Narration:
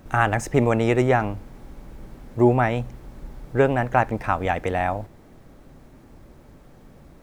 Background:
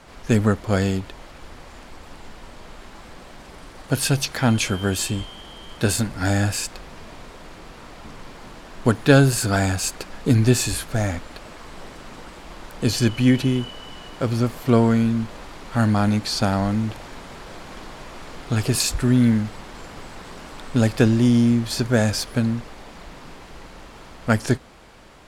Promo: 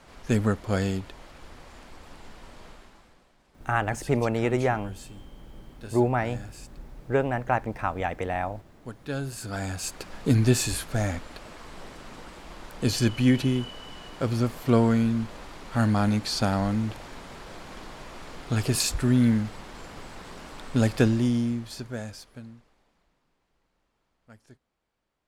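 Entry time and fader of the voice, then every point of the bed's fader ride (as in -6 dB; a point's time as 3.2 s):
3.55 s, -5.5 dB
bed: 2.67 s -5.5 dB
3.34 s -21.5 dB
8.93 s -21.5 dB
10.13 s -4 dB
21.01 s -4 dB
23.27 s -33 dB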